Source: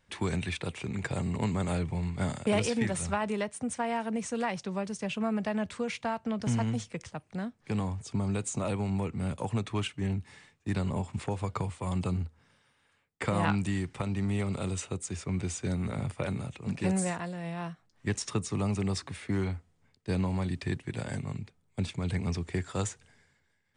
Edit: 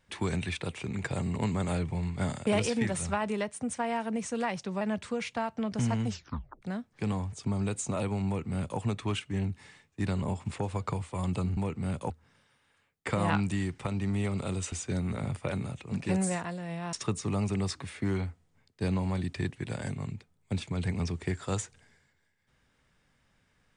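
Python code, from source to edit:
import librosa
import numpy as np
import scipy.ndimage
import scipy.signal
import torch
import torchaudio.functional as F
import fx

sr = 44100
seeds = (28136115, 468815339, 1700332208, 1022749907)

y = fx.edit(x, sr, fx.cut(start_s=4.81, length_s=0.68),
    fx.tape_stop(start_s=6.74, length_s=0.56),
    fx.duplicate(start_s=8.94, length_s=0.53, to_s=12.25),
    fx.cut(start_s=14.87, length_s=0.6),
    fx.cut(start_s=17.68, length_s=0.52), tone=tone)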